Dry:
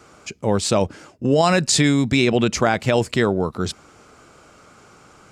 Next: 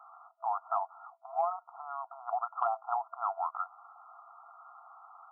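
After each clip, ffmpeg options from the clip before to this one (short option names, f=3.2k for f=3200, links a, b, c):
-af "afftfilt=real='re*between(b*sr/4096,660,1400)':imag='im*between(b*sr/4096,660,1400)':win_size=4096:overlap=0.75,acompressor=threshold=-27dB:ratio=12"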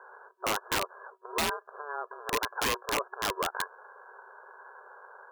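-af "aeval=exprs='(mod(18.8*val(0)+1,2)-1)/18.8':c=same,aeval=exprs='val(0)*sin(2*PI*290*n/s)':c=same,volume=6dB"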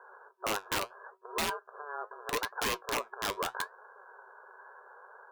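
-af "flanger=delay=4:depth=6.8:regen=70:speed=0.77:shape=triangular,volume=1.5dB"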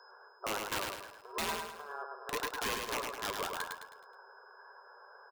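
-af "aeval=exprs='val(0)+0.00126*sin(2*PI*5100*n/s)':c=same,aecho=1:1:106|212|318|424|530:0.631|0.259|0.106|0.0435|0.0178,volume=-4dB"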